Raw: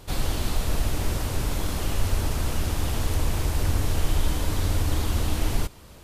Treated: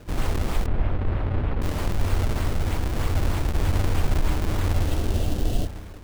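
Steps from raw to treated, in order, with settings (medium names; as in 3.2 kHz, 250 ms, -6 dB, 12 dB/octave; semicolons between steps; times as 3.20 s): spring tank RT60 1.9 s, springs 33/55 ms, DRR 11.5 dB; decimation with a swept rate 37×, swing 160% 3.2 Hz; 0.66–1.62 s: distance through air 450 m; 4.78–5.71 s: spectral replace 770–2600 Hz both; trim +1 dB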